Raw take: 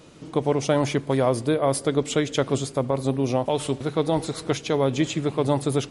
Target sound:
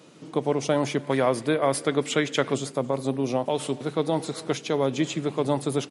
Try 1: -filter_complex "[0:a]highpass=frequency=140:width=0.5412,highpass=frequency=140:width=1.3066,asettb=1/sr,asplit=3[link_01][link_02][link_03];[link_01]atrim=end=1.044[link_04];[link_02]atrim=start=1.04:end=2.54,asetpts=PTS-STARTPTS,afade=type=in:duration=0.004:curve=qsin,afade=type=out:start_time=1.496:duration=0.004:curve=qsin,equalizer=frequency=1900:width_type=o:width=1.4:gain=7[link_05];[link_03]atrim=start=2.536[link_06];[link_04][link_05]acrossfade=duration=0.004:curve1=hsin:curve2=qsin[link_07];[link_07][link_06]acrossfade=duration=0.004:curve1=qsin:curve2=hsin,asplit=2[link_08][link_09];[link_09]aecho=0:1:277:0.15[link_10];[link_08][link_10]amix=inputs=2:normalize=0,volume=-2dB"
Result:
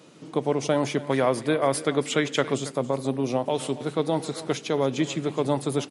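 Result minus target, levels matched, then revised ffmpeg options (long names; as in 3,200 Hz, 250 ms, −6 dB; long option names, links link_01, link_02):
echo-to-direct +7 dB
-filter_complex "[0:a]highpass=frequency=140:width=0.5412,highpass=frequency=140:width=1.3066,asettb=1/sr,asplit=3[link_01][link_02][link_03];[link_01]atrim=end=1.044[link_04];[link_02]atrim=start=1.04:end=2.54,asetpts=PTS-STARTPTS,afade=type=in:duration=0.004:curve=qsin,afade=type=out:start_time=1.496:duration=0.004:curve=qsin,equalizer=frequency=1900:width_type=o:width=1.4:gain=7[link_05];[link_03]atrim=start=2.536[link_06];[link_04][link_05]acrossfade=duration=0.004:curve1=hsin:curve2=qsin[link_07];[link_07][link_06]acrossfade=duration=0.004:curve1=qsin:curve2=hsin,asplit=2[link_08][link_09];[link_09]aecho=0:1:277:0.0668[link_10];[link_08][link_10]amix=inputs=2:normalize=0,volume=-2dB"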